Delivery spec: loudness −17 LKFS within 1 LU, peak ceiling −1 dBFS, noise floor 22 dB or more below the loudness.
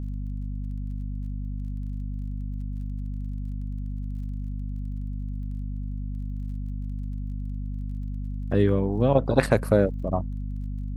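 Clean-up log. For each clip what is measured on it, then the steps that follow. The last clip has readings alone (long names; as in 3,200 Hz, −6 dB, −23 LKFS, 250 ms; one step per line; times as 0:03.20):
crackle rate 31 per second; mains hum 50 Hz; hum harmonics up to 250 Hz; level of the hum −28 dBFS; integrated loudness −29.5 LKFS; sample peak −4.5 dBFS; target loudness −17.0 LKFS
→ click removal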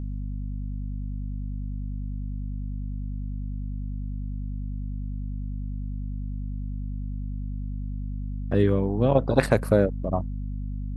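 crackle rate 0 per second; mains hum 50 Hz; hum harmonics up to 250 Hz; level of the hum −28 dBFS
→ hum removal 50 Hz, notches 5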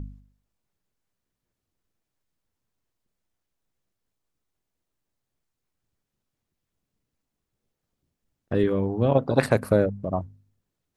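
mains hum none found; integrated loudness −24.0 LKFS; sample peak −5.5 dBFS; target loudness −17.0 LKFS
→ level +7 dB
brickwall limiter −1 dBFS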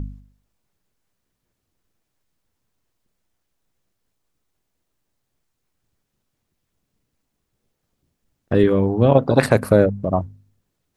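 integrated loudness −17.5 LKFS; sample peak −1.0 dBFS; background noise floor −77 dBFS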